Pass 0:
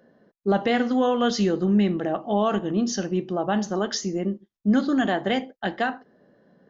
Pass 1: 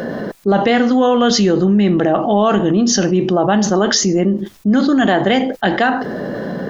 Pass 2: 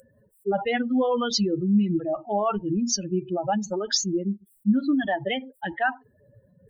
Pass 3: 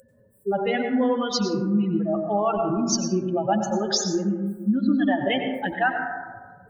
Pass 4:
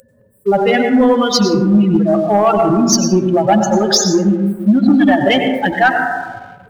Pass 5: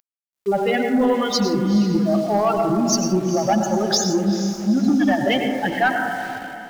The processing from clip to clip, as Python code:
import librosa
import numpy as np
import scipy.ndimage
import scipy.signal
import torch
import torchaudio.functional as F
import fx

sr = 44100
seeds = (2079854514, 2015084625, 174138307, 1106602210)

y1 = fx.env_flatten(x, sr, amount_pct=70)
y1 = y1 * librosa.db_to_amplitude(5.0)
y2 = fx.bin_expand(y1, sr, power=3.0)
y2 = y2 * (1.0 - 0.35 / 2.0 + 0.35 / 2.0 * np.cos(2.0 * np.pi * 5.1 * (np.arange(len(y2)) / sr)))
y2 = y2 * librosa.db_to_amplitude(-3.0)
y3 = fx.rider(y2, sr, range_db=4, speed_s=0.5)
y3 = fx.rev_plate(y3, sr, seeds[0], rt60_s=1.4, hf_ratio=0.25, predelay_ms=80, drr_db=4.0)
y4 = fx.leveller(y3, sr, passes=1)
y4 = y4 * librosa.db_to_amplitude(8.0)
y5 = np.where(np.abs(y4) >= 10.0 ** (-29.5 / 20.0), y4, 0.0)
y5 = fx.echo_diffused(y5, sr, ms=450, feedback_pct=41, wet_db=-11)
y5 = y5 * librosa.db_to_amplitude(-7.0)